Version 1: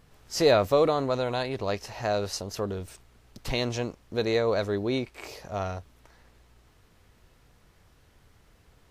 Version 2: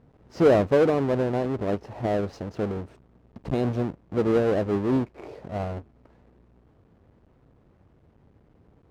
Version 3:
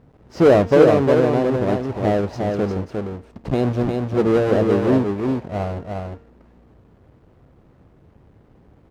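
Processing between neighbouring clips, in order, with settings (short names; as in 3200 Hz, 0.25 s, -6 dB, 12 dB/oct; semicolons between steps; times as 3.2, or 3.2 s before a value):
half-waves squared off; band-pass 260 Hz, Q 0.52; gain +1 dB
de-hum 230.6 Hz, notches 34; on a send: echo 0.354 s -4 dB; on the sum: gain +5.5 dB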